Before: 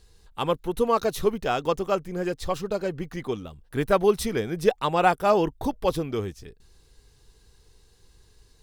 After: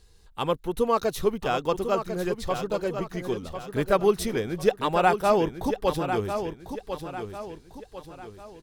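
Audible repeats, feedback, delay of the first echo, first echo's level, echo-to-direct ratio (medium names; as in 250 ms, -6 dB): 4, 40%, 1048 ms, -8.5 dB, -7.5 dB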